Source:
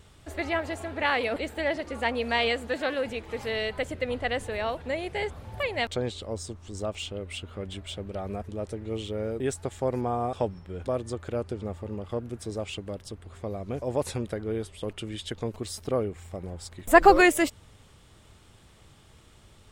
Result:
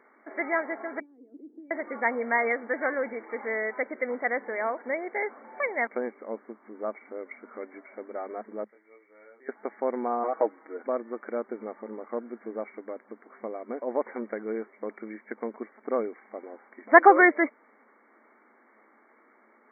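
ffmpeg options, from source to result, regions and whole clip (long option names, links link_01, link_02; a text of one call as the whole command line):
ffmpeg -i in.wav -filter_complex "[0:a]asettb=1/sr,asplit=3[link_01][link_02][link_03];[link_01]atrim=end=1.004[link_04];[link_02]atrim=start=1:end=1.71,asetpts=PTS-STARTPTS,afade=type=in:duration=0.004:curve=qsin,afade=type=out:start_time=0.706:duration=0.004:curve=qsin,acompressor=threshold=-32dB:ratio=16:attack=3.2:release=140:knee=1:detection=peak,asuperpass=centerf=300:order=4:qfactor=3.2[link_05];[link_03]atrim=start=1.706[link_06];[link_04][link_05]acrossfade=duration=0.004:curve1=hsin:curve2=qsin[link_07];[link_07][link_06]acrossfade=duration=0.004:curve1=qsin:curve2=hsin,asettb=1/sr,asplit=3[link_08][link_09][link_10];[link_08]atrim=end=8.644[link_11];[link_09]atrim=start=8.64:end=9.49,asetpts=PTS-STARTPTS,afade=type=in:duration=0.004:curve=qsin,afade=type=out:start_time=0.846:duration=0.004:curve=qsin,aderivative,asplit=2[link_12][link_13];[link_13]adelay=25,volume=-3dB[link_14];[link_12][link_14]amix=inputs=2:normalize=0,atrim=end_sample=37485[link_15];[link_10]atrim=start=9.486[link_16];[link_11][link_15]acrossfade=duration=0.004:curve1=hsin:curve2=qsin[link_17];[link_17][link_16]acrossfade=duration=0.004:curve1=qsin:curve2=hsin,asettb=1/sr,asplit=3[link_18][link_19][link_20];[link_18]atrim=end=10.234[link_21];[link_19]atrim=start=10.23:end=10.77,asetpts=PTS-STARTPTS,afade=type=in:duration=0.004:curve=qsin,afade=type=out:start_time=0.536:duration=0.004:curve=qsin,aecho=1:1:6.3:0.89,atrim=end_sample=23814,acompressor=mode=upward:threshold=-40dB:ratio=2.5:attack=3.2:release=140:knee=2.83:detection=peak[link_22];[link_20]atrim=start=10.766[link_23];[link_21][link_22]acrossfade=duration=0.004:curve1=hsin:curve2=qsin[link_24];[link_24][link_23]acrossfade=duration=0.004:curve1=qsin:curve2=hsin,afftfilt=real='re*between(b*sr/4096,210,2300)':imag='im*between(b*sr/4096,210,2300)':win_size=4096:overlap=0.75,equalizer=frequency=1600:width=0.56:gain=5.5,volume=-2dB" out.wav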